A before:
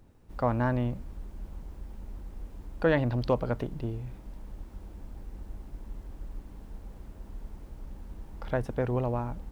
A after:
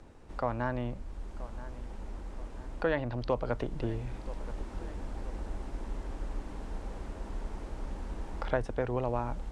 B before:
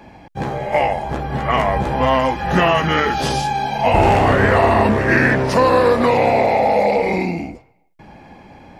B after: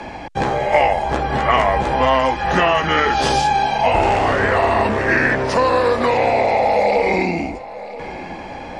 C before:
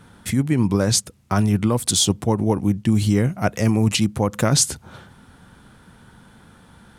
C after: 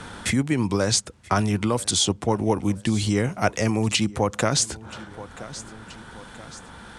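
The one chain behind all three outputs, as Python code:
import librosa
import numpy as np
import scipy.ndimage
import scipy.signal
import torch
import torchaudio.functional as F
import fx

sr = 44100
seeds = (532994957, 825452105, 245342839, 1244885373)

y = scipy.signal.sosfilt(scipy.signal.butter(4, 9200.0, 'lowpass', fs=sr, output='sos'), x)
y = fx.rider(y, sr, range_db=4, speed_s=0.5)
y = fx.peak_eq(y, sr, hz=150.0, db=-8.0, octaves=1.9)
y = fx.echo_feedback(y, sr, ms=978, feedback_pct=36, wet_db=-23.0)
y = fx.band_squash(y, sr, depth_pct=40)
y = y * librosa.db_to_amplitude(1.0)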